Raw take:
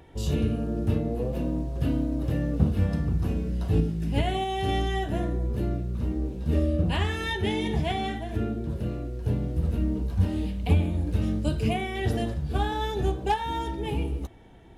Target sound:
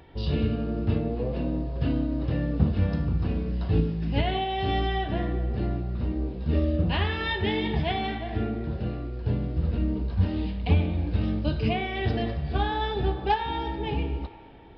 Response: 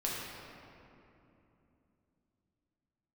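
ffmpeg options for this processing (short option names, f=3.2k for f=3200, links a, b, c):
-filter_complex "[0:a]asplit=2[a][b];[b]highpass=590[c];[1:a]atrim=start_sample=2205[d];[c][d]afir=irnorm=-1:irlink=0,volume=-11.5dB[e];[a][e]amix=inputs=2:normalize=0,aresample=11025,aresample=44100"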